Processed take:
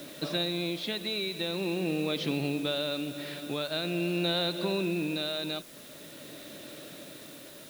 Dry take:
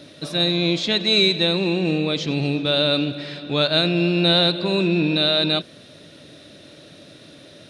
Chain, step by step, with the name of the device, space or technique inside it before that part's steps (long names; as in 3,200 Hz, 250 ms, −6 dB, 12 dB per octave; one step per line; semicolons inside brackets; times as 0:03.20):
medium wave at night (band-pass filter 170–4,100 Hz; downward compressor 4 to 1, threshold −27 dBFS, peak gain reduction 11 dB; amplitude tremolo 0.45 Hz, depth 42%; steady tone 10,000 Hz −60 dBFS; white noise bed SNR 19 dB)